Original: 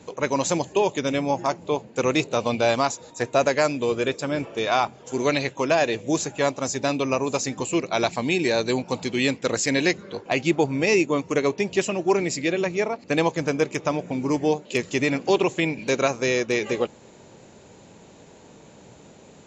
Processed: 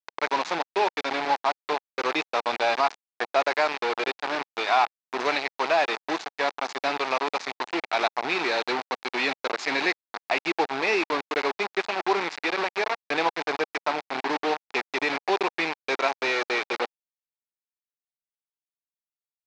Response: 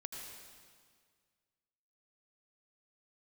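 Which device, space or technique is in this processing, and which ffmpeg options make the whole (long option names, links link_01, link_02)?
hand-held game console: -filter_complex "[0:a]asettb=1/sr,asplit=3[link_01][link_02][link_03];[link_01]atrim=end=1.324[link_04];[link_02]atrim=start=1.32:end=2.11,asetpts=PTS-STARTPTS,afade=type=in:duration=0.004:curve=qsin,afade=type=out:start_time=0.786:duration=0.004:curve=qsin,highpass=100[link_05];[link_03]atrim=start=2.106[link_06];[link_04][link_05]acrossfade=duration=0.004:curve1=hsin:curve2=qsin[link_07];[link_07][link_06]acrossfade=duration=0.004:curve1=qsin:curve2=hsin,acrusher=bits=3:mix=0:aa=0.000001,highpass=490,equalizer=frequency=540:width_type=q:width=4:gain=-7,equalizer=frequency=830:width_type=q:width=4:gain=4,equalizer=frequency=3100:width_type=q:width=4:gain=-6,lowpass=frequency=4200:width=0.5412,lowpass=frequency=4200:width=1.3066"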